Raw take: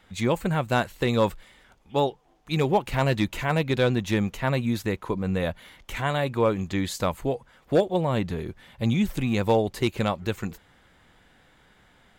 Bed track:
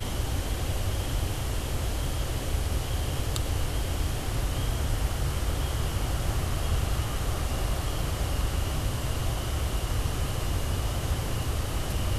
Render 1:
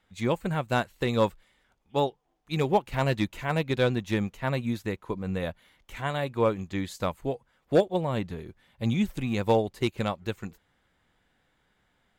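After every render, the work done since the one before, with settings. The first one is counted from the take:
expander for the loud parts 1.5 to 1, over −40 dBFS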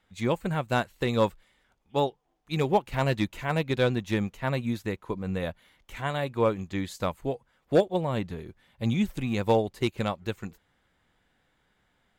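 no processing that can be heard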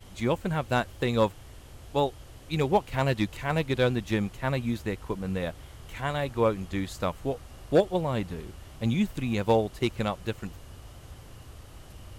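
mix in bed track −17.5 dB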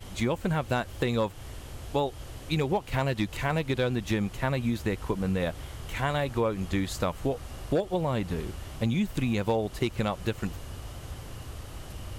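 in parallel at 0 dB: brickwall limiter −20 dBFS, peak gain reduction 8.5 dB
on the sum: downward compressor 4 to 1, threshold −24 dBFS, peak gain reduction 10 dB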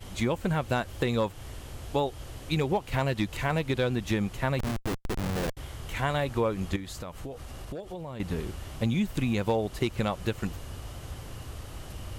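0:04.59–0:05.57: comparator with hysteresis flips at −28.5 dBFS
0:06.76–0:08.20: downward compressor 4 to 1, threshold −36 dBFS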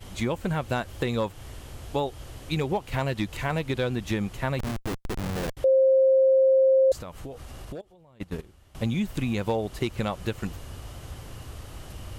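0:05.64–0:06.92: beep over 530 Hz −15.5 dBFS
0:07.81–0:08.75: noise gate −31 dBFS, range −17 dB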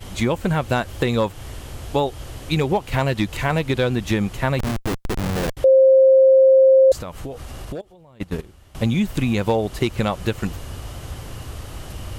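level +7 dB

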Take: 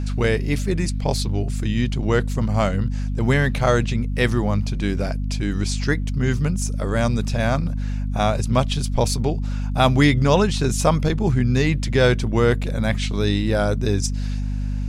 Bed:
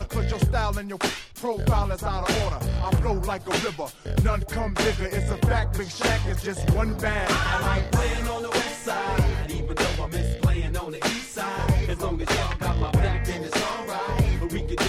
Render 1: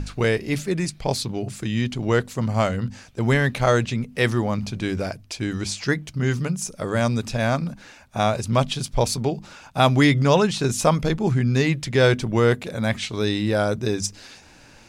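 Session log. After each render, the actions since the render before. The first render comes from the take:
mains-hum notches 50/100/150/200/250 Hz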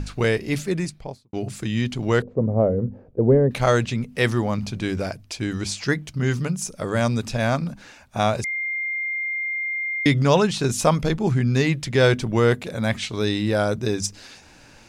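0:00.69–0:01.33: fade out and dull
0:02.22–0:03.51: low-pass with resonance 480 Hz, resonance Q 3.4
0:08.44–0:10.06: beep over 2,110 Hz −23.5 dBFS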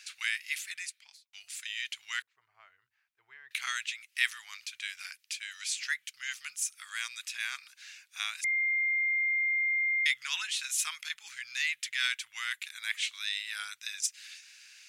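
inverse Chebyshev high-pass filter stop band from 570 Hz, stop band 60 dB
dynamic equaliser 5,000 Hz, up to −7 dB, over −47 dBFS, Q 1.7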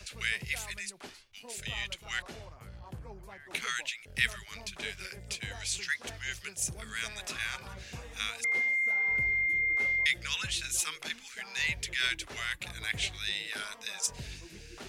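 mix in bed −22.5 dB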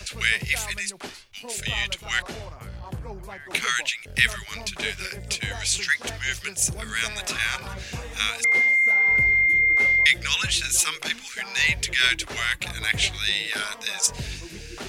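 level +10 dB
brickwall limiter −3 dBFS, peak gain reduction 2 dB

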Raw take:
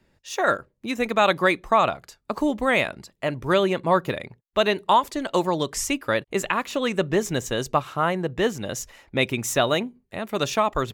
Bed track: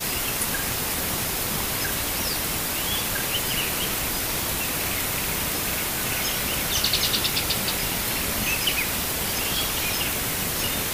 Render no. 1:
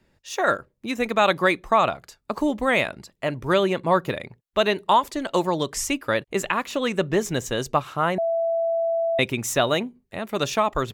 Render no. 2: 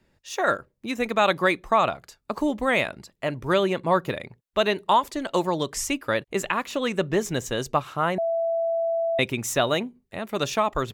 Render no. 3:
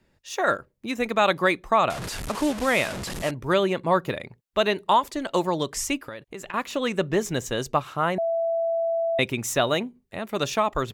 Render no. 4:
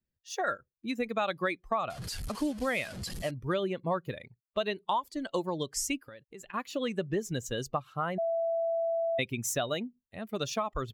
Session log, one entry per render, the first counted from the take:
0:08.18–0:09.19: beep over 665 Hz −20 dBFS
level −1.5 dB
0:01.90–0:03.31: linear delta modulator 64 kbit/s, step −26.5 dBFS; 0:05.97–0:06.54: downward compressor 8 to 1, threshold −33 dBFS
spectral dynamics exaggerated over time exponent 1.5; downward compressor 3 to 1, threshold −29 dBFS, peak gain reduction 10 dB

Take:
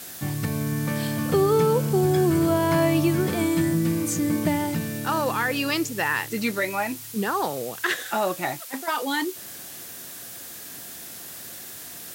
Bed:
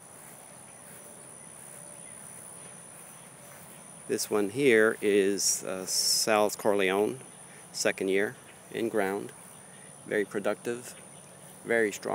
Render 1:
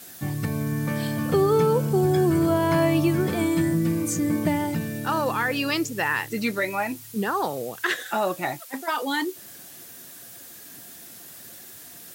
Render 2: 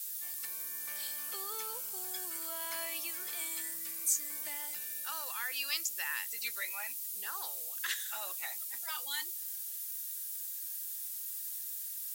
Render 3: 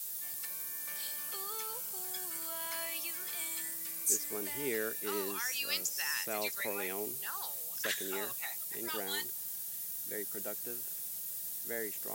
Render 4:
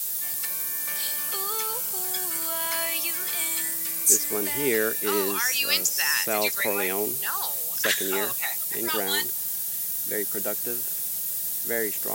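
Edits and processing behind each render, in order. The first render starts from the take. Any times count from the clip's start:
broadband denoise 6 dB, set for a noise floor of −40 dBFS
high-pass filter 910 Hz 6 dB per octave; first difference
mix in bed −14.5 dB
level +11.5 dB

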